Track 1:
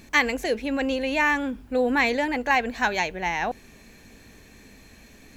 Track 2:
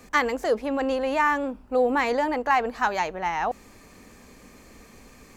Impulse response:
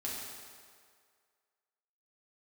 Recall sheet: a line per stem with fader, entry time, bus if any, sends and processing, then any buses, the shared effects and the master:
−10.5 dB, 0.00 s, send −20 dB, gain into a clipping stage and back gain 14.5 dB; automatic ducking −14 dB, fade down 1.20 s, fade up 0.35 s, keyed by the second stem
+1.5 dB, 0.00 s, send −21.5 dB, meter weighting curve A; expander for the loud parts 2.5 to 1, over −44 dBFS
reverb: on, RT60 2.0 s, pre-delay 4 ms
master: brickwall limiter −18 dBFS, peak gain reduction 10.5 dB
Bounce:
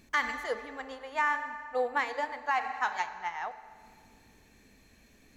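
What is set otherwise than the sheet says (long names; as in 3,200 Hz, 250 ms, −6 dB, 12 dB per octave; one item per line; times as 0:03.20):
stem 1: send off
reverb return +10.0 dB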